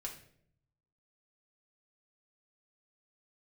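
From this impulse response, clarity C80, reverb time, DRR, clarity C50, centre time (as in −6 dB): 12.0 dB, 0.65 s, −1.0 dB, 9.0 dB, 18 ms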